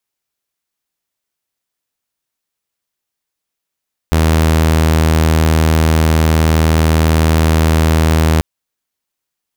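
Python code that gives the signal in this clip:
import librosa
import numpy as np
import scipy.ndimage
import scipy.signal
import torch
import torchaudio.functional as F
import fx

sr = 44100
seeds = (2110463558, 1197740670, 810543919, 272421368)

y = 10.0 ** (-6.5 / 20.0) * (2.0 * np.mod(79.7 * (np.arange(round(4.29 * sr)) / sr), 1.0) - 1.0)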